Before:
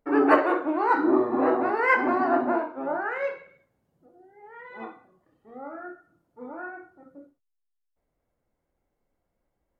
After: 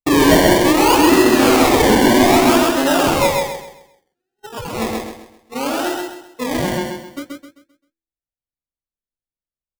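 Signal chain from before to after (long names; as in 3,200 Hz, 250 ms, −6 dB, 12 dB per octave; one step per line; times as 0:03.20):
noise gate −46 dBFS, range −46 dB
low-shelf EQ 260 Hz +9.5 dB
hum removal 82.27 Hz, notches 6
in parallel at +2.5 dB: downward compressor, threshold −31 dBFS, peak gain reduction 18.5 dB
on the sum: sample-and-hold swept by an LFO 27×, swing 60% 0.63 Hz
soft clipping −16.5 dBFS, distortion −11 dB
on a send: repeating echo 131 ms, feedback 35%, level −3 dB
on the sum: level +8 dB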